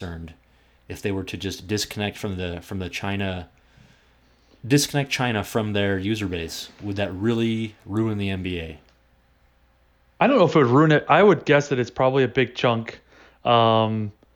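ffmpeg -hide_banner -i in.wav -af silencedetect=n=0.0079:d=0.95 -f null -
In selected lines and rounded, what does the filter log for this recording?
silence_start: 8.89
silence_end: 10.20 | silence_duration: 1.31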